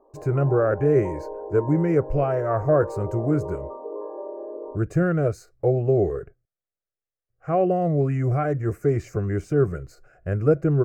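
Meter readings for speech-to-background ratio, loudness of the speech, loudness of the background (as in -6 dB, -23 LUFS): 12.0 dB, -23.0 LUFS, -35.0 LUFS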